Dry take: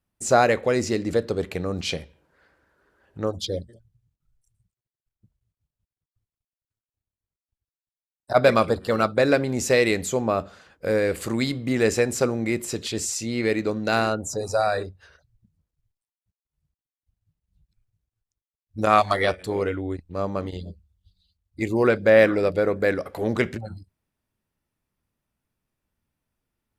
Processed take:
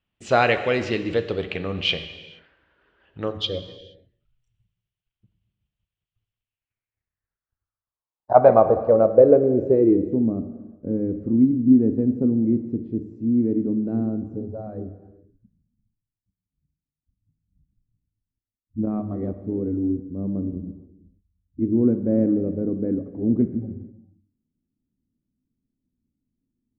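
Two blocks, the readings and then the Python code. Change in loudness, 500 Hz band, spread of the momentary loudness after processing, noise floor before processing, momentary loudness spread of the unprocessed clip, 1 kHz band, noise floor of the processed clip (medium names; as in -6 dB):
+2.0 dB, +0.5 dB, 17 LU, under -85 dBFS, 12 LU, -1.5 dB, under -85 dBFS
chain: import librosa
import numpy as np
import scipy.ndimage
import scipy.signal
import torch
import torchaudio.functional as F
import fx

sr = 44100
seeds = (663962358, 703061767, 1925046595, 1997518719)

y = fx.filter_sweep_lowpass(x, sr, from_hz=3000.0, to_hz=260.0, start_s=6.38, end_s=10.24, q=4.0)
y = fx.rev_gated(y, sr, seeds[0], gate_ms=500, shape='falling', drr_db=9.5)
y = F.gain(torch.from_numpy(y), -1.5).numpy()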